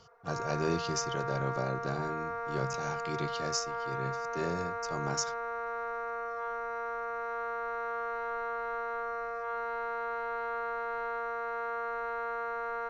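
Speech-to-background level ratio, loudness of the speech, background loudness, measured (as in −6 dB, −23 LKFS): −0.5 dB, −36.5 LKFS, −36.0 LKFS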